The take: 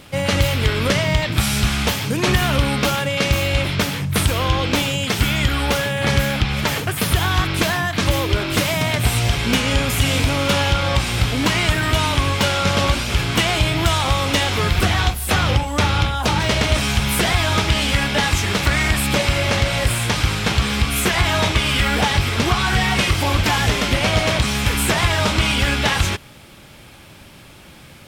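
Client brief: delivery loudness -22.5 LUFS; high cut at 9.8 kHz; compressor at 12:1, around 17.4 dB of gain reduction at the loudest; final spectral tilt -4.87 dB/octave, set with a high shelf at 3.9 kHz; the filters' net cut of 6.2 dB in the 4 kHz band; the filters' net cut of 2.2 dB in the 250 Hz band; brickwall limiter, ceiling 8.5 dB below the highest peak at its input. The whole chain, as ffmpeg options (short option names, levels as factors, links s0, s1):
-af "lowpass=9800,equalizer=f=250:t=o:g=-3,highshelf=f=3900:g=-5,equalizer=f=4000:t=o:g=-5.5,acompressor=threshold=0.0282:ratio=12,volume=5.31,alimiter=limit=0.224:level=0:latency=1"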